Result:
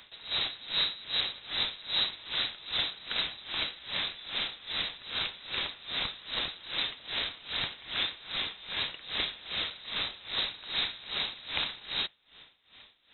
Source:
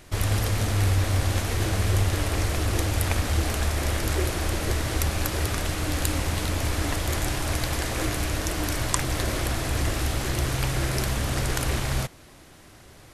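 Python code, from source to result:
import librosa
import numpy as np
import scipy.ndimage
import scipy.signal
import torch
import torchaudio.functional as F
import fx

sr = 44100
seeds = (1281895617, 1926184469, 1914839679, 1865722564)

y = scipy.signal.sosfilt(scipy.signal.butter(2, 140.0, 'highpass', fs=sr, output='sos'), x)
y = fx.freq_invert(y, sr, carrier_hz=3900)
y = y * 10.0 ** (-20 * (0.5 - 0.5 * np.cos(2.0 * np.pi * 2.5 * np.arange(len(y)) / sr)) / 20.0)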